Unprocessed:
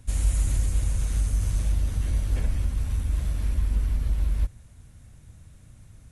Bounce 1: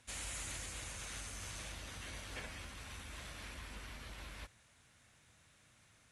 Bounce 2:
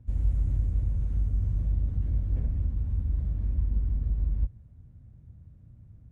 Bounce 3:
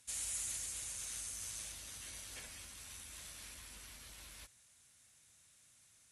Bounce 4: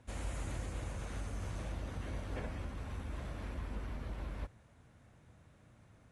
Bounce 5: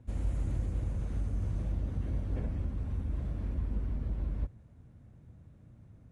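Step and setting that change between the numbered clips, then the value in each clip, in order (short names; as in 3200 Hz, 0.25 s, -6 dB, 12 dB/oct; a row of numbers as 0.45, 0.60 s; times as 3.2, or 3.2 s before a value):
band-pass, frequency: 2500, 110, 6900, 780, 280 Hz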